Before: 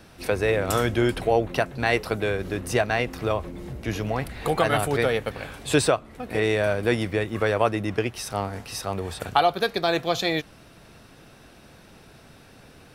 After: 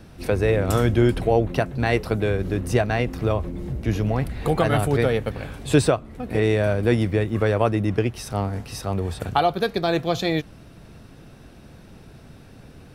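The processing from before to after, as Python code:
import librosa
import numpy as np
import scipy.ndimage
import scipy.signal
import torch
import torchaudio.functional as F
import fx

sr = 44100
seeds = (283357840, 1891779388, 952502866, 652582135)

y = fx.low_shelf(x, sr, hz=380.0, db=11.0)
y = y * librosa.db_to_amplitude(-2.5)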